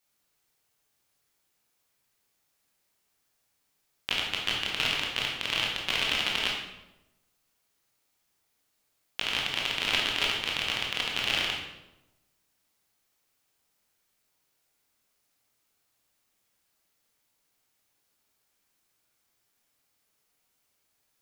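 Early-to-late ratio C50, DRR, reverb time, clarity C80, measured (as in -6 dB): 2.5 dB, -2.5 dB, 0.95 s, 5.5 dB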